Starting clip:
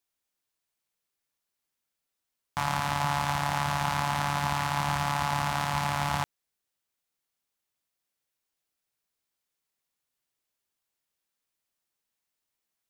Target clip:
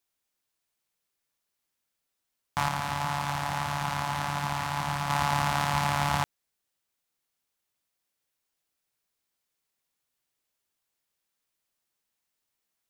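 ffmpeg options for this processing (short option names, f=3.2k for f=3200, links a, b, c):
-filter_complex "[0:a]asettb=1/sr,asplit=3[a][b][c];[a]atrim=end=2.684[d];[b]atrim=start=2.68:end=5.1,asetpts=PTS-STARTPTS,afade=t=in:d=0.004:c=qsin,afade=t=out:st=2.416:d=0.004:c=qsin,flanger=delay=6.1:depth=5.9:regen=-67:speed=1.7:shape=sinusoidal[e];[c]atrim=start=5.096[f];[d][e]acrossfade=d=0.004:c1=hsin:c2=qsin[g];[g][f]acrossfade=d=0.004:c1=qsin:c2=hsin,volume=2dB"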